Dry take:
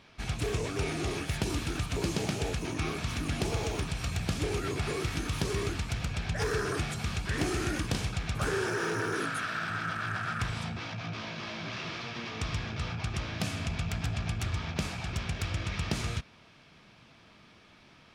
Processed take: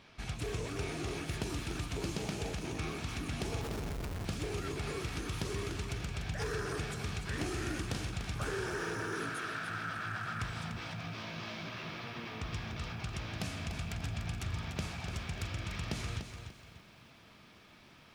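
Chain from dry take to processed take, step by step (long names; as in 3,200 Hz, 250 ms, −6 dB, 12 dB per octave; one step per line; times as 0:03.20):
0:11.69–0:12.53: low-pass filter 3,200 Hz 6 dB per octave
in parallel at +2 dB: downward compressor, threshold −42 dBFS, peak gain reduction 15.5 dB
0:03.61–0:04.25: on the sum: comparator with hysteresis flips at −31 dBFS
feedback echo at a low word length 294 ms, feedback 35%, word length 9 bits, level −8 dB
level −8.5 dB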